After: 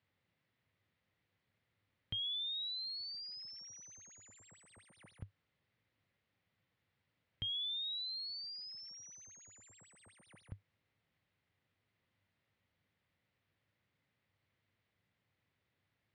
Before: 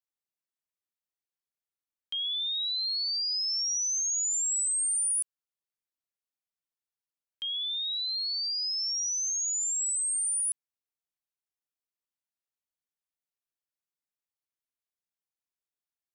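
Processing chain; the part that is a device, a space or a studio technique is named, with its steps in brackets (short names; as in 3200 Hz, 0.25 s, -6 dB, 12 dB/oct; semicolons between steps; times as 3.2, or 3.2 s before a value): guitar amplifier (tube stage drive 53 dB, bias 0.6; tone controls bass +15 dB, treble -3 dB; speaker cabinet 92–4000 Hz, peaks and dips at 100 Hz +9 dB, 530 Hz +5 dB, 2000 Hz +7 dB); gain +16.5 dB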